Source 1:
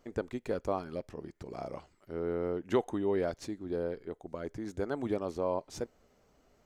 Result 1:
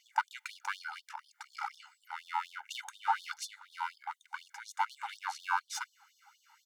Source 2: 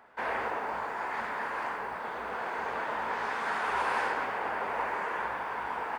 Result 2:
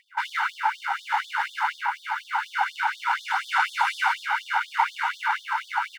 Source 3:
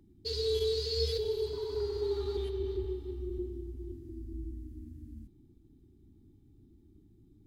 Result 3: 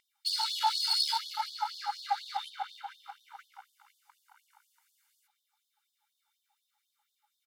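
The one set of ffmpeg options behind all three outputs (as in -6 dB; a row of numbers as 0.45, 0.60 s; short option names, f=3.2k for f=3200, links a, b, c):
-af "acontrast=46,aeval=exprs='clip(val(0),-1,0.0211)':c=same,aphaser=in_gain=1:out_gain=1:delay=1.4:decay=0.21:speed=0.56:type=sinusoidal,equalizer=f=550:w=0.53:g=14.5,aecho=1:1:1.4:0.64,afftfilt=real='re*gte(b*sr/1024,770*pow(3200/770,0.5+0.5*sin(2*PI*4.1*pts/sr)))':imag='im*gte(b*sr/1024,770*pow(3200/770,0.5+0.5*sin(2*PI*4.1*pts/sr)))':win_size=1024:overlap=0.75"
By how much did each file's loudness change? -3.0, +6.5, +3.5 LU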